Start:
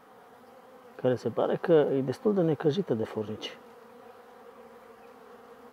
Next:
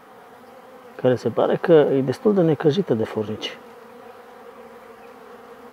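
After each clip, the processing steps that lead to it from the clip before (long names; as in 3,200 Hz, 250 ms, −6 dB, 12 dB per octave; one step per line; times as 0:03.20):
parametric band 2,200 Hz +2.5 dB
level +8 dB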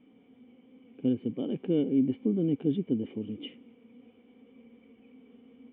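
formant resonators in series i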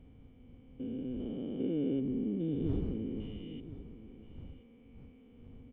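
spectrum averaged block by block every 400 ms
wind on the microphone 110 Hz −44 dBFS
single-tap delay 1,027 ms −15 dB
level −2.5 dB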